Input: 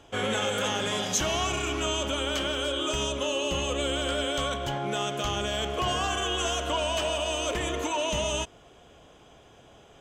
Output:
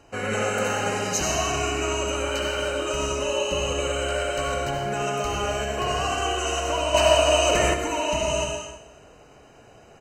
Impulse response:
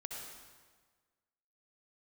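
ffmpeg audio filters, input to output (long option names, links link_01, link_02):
-filter_complex "[0:a]asuperstop=centerf=3400:order=20:qfactor=5.1,aecho=1:1:159|318|477|636:0.133|0.0587|0.0258|0.0114[link_01];[1:a]atrim=start_sample=2205,afade=type=out:start_time=0.4:duration=0.01,atrim=end_sample=18081[link_02];[link_01][link_02]afir=irnorm=-1:irlink=0,asettb=1/sr,asplit=3[link_03][link_04][link_05];[link_03]atrim=end=6.944[link_06];[link_04]atrim=start=6.94:end=7.74,asetpts=PTS-STARTPTS,afade=type=in:duration=0.004:curve=qsin,afade=type=out:start_time=0.796:duration=0.004:curve=qsin,acontrast=53[link_07];[link_05]atrim=start=7.736[link_08];[link_06][link_07]acrossfade=duration=0.004:curve1=hsin:curve2=qsin[link_09];[link_09][link_08]acrossfade=duration=0.004:curve1=qsin:curve2=hsin,volume=5dB"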